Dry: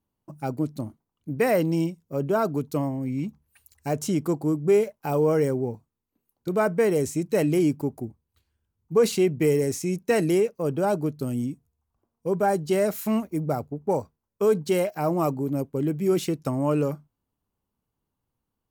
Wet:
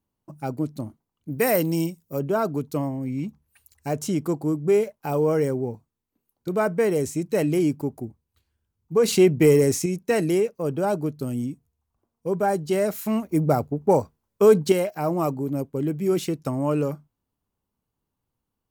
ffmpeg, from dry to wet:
ffmpeg -i in.wav -filter_complex "[0:a]asplit=3[link_01][link_02][link_03];[link_01]afade=type=out:start_time=1.31:duration=0.02[link_04];[link_02]aemphasis=mode=production:type=50kf,afade=type=in:start_time=1.31:duration=0.02,afade=type=out:start_time=2.18:duration=0.02[link_05];[link_03]afade=type=in:start_time=2.18:duration=0.02[link_06];[link_04][link_05][link_06]amix=inputs=3:normalize=0,asettb=1/sr,asplit=3[link_07][link_08][link_09];[link_07]atrim=end=9.084[link_10];[link_08]atrim=start=9.08:end=9.86,asetpts=PTS-STARTPTS,afade=type=in:duration=0.004:curve=qsin,afade=type=out:start_time=0.776:duration=0.004:curve=qsin,acontrast=41[link_11];[link_09]atrim=start=9.856[link_12];[link_10][link_11]acrossfade=duration=0.004:curve1=hsin:curve2=qsin[link_13];[link_13][link_12]acrossfade=duration=0.004:curve1=qsin:curve2=hsin,asplit=3[link_14][link_15][link_16];[link_14]atrim=end=13.292[link_17];[link_15]atrim=start=13.288:end=14.722,asetpts=PTS-STARTPTS,volume=6dB[link_18];[link_16]atrim=start=14.718[link_19];[link_17][link_18]acrossfade=duration=0.004:curve1=hsin:curve2=hsin[link_20];[link_20][link_19]acrossfade=duration=0.004:curve1=hsin:curve2=hsin" out.wav

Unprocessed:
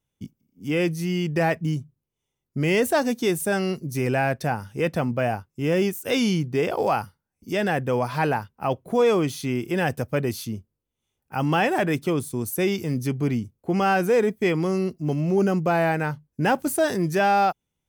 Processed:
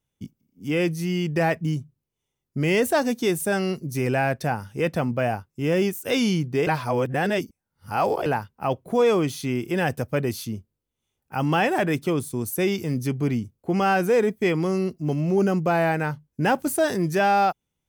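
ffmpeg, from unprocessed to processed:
ffmpeg -i in.wav -filter_complex "[0:a]asplit=3[link_01][link_02][link_03];[link_01]atrim=end=6.672[link_04];[link_02]atrim=start=6.668:end=8.262,asetpts=PTS-STARTPTS,areverse[link_05];[link_03]atrim=start=8.258[link_06];[link_04][link_05]acrossfade=duration=0.004:curve1=hsin:curve2=hsin[link_07];[link_07][link_06]acrossfade=duration=0.004:curve1=hsin:curve2=hsin" out.wav

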